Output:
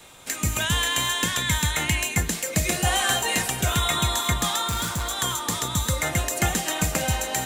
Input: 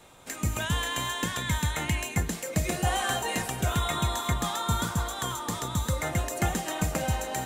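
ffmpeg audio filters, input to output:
ffmpeg -i in.wav -filter_complex "[0:a]acrossover=split=710|1700[link_01][link_02][link_03];[link_03]acontrast=66[link_04];[link_01][link_02][link_04]amix=inputs=3:normalize=0,asettb=1/sr,asplit=3[link_05][link_06][link_07];[link_05]atrim=end=4.684[link_08];[link_06]atrim=start=4.68:end=5.1,asetpts=PTS-STARTPTS,afade=type=in:duration=0.004:curve=qsin,afade=type=out:start_time=0.416:duration=0.004:curve=qsin,asoftclip=type=hard:threshold=-26dB[link_09];[link_07]atrim=start=5.096[link_10];[link_08][link_09]acrossfade=duration=0.004:curve1=hsin:curve2=qsin[link_11];[link_11][link_10]acrossfade=duration=0.004:curve1=qsin:curve2=hsin,volume=2.5dB" out.wav

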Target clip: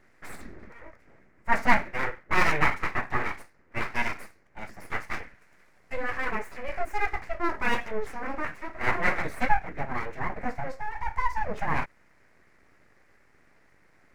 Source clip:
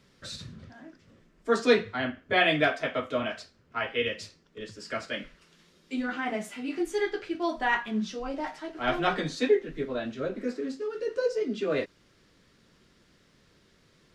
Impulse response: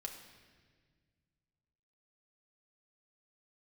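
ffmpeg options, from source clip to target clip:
-af "aeval=exprs='abs(val(0))':channel_layout=same,highshelf=frequency=2600:width_type=q:width=3:gain=-8,volume=3dB"

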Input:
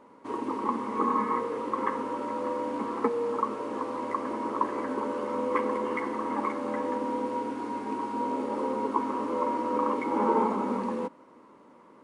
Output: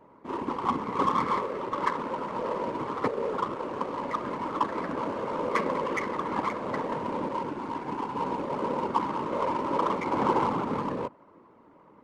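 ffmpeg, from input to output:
ffmpeg -i in.wav -af "afftfilt=real='hypot(re,im)*cos(2*PI*random(0))':imag='hypot(re,im)*sin(2*PI*random(1))':win_size=512:overlap=0.75,crystalizer=i=6.5:c=0,adynamicsmooth=sensitivity=4.5:basefreq=1400,volume=4.5dB" out.wav

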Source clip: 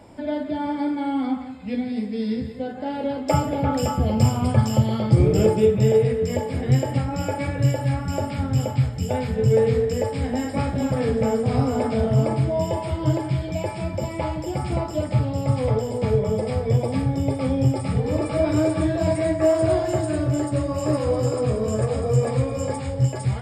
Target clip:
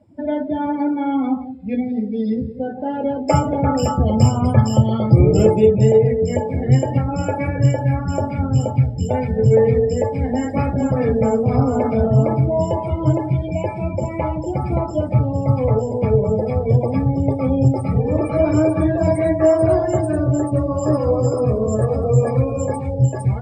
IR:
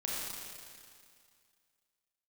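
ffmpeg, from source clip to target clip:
-af "afftdn=noise_reduction=24:noise_floor=-35,volume=4.5dB"

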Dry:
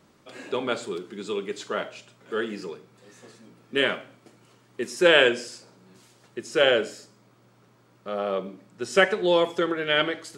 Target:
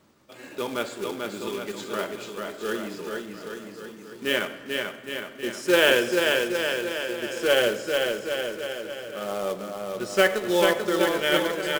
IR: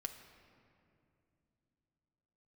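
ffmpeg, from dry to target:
-filter_complex "[0:a]atempo=0.88,aecho=1:1:440|814|1132|1402|1632:0.631|0.398|0.251|0.158|0.1,acrusher=bits=3:mode=log:mix=0:aa=0.000001,asplit=2[link_01][link_02];[1:a]atrim=start_sample=2205,asetrate=33516,aresample=44100[link_03];[link_02][link_03]afir=irnorm=-1:irlink=0,volume=0dB[link_04];[link_01][link_04]amix=inputs=2:normalize=0,volume=-7dB"

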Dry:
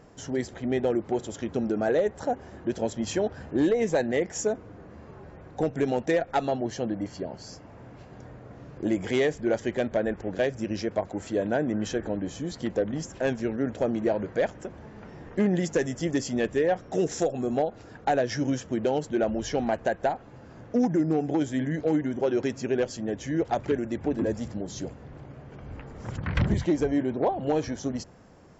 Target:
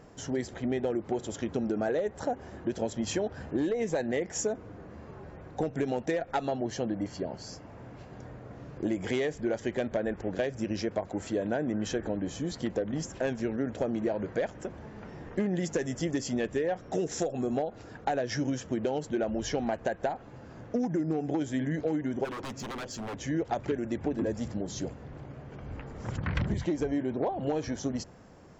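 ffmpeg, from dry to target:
ffmpeg -i in.wav -filter_complex "[0:a]acompressor=threshold=-26dB:ratio=6,asplit=3[link_01][link_02][link_03];[link_01]afade=type=out:start_time=22.24:duration=0.02[link_04];[link_02]aeval=exprs='0.0251*(abs(mod(val(0)/0.0251+3,4)-2)-1)':channel_layout=same,afade=type=in:start_time=22.24:duration=0.02,afade=type=out:start_time=23.18:duration=0.02[link_05];[link_03]afade=type=in:start_time=23.18:duration=0.02[link_06];[link_04][link_05][link_06]amix=inputs=3:normalize=0" out.wav

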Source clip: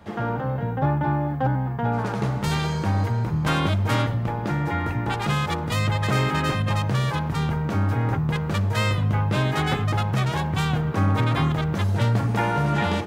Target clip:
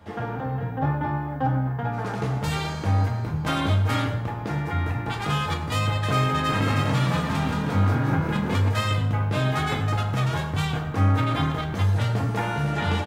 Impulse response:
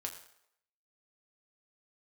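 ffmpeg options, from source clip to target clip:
-filter_complex "[0:a]asplit=3[link_01][link_02][link_03];[link_01]afade=type=out:start_time=6.52:duration=0.02[link_04];[link_02]asplit=9[link_05][link_06][link_07][link_08][link_09][link_10][link_11][link_12][link_13];[link_06]adelay=174,afreqshift=42,volume=-3.5dB[link_14];[link_07]adelay=348,afreqshift=84,volume=-8.4dB[link_15];[link_08]adelay=522,afreqshift=126,volume=-13.3dB[link_16];[link_09]adelay=696,afreqshift=168,volume=-18.1dB[link_17];[link_10]adelay=870,afreqshift=210,volume=-23dB[link_18];[link_11]adelay=1044,afreqshift=252,volume=-27.9dB[link_19];[link_12]adelay=1218,afreqshift=294,volume=-32.8dB[link_20];[link_13]adelay=1392,afreqshift=336,volume=-37.7dB[link_21];[link_05][link_14][link_15][link_16][link_17][link_18][link_19][link_20][link_21]amix=inputs=9:normalize=0,afade=type=in:start_time=6.52:duration=0.02,afade=type=out:start_time=8.68:duration=0.02[link_22];[link_03]afade=type=in:start_time=8.68:duration=0.02[link_23];[link_04][link_22][link_23]amix=inputs=3:normalize=0[link_24];[1:a]atrim=start_sample=2205[link_25];[link_24][link_25]afir=irnorm=-1:irlink=0"

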